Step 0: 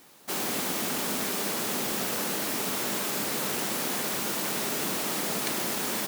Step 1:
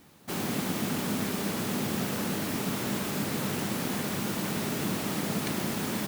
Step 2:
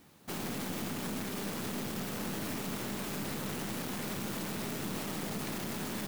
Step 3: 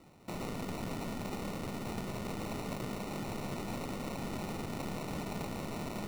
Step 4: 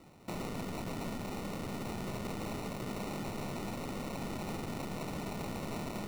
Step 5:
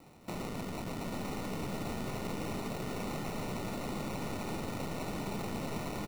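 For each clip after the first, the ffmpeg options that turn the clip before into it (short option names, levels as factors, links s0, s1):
-af "bass=f=250:g=14,treble=f=4000:g=-4,volume=0.75"
-af "alimiter=level_in=1.12:limit=0.0631:level=0:latency=1:release=24,volume=0.891,aeval=exprs='(tanh(20*val(0)+0.65)-tanh(0.65))/20':c=same"
-filter_complex "[0:a]acrossover=split=150|3000[s0][s1][s2];[s1]acompressor=threshold=0.00891:ratio=6[s3];[s0][s3][s2]amix=inputs=3:normalize=0,acrusher=samples=27:mix=1:aa=0.000001,volume=1.12"
-af "alimiter=level_in=2.99:limit=0.0631:level=0:latency=1:release=34,volume=0.335,volume=1.19"
-filter_complex "[0:a]acrusher=bits=9:mix=0:aa=0.000001,asplit=2[s0][s1];[s1]aecho=0:1:847:0.668[s2];[s0][s2]amix=inputs=2:normalize=0"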